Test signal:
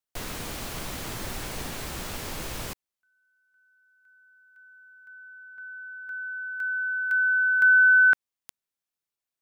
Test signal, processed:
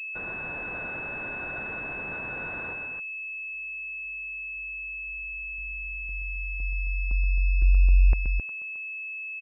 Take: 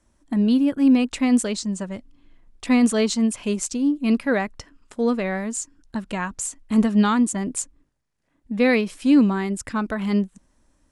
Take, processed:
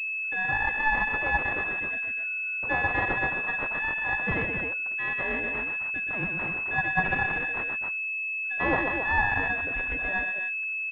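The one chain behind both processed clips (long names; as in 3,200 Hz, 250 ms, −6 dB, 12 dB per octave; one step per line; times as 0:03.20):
band-splitting scrambler in four parts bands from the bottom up 2143
loudspeakers that aren't time-aligned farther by 43 metres −5 dB, 91 metres −6 dB
switching amplifier with a slow clock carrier 2,600 Hz
level −1.5 dB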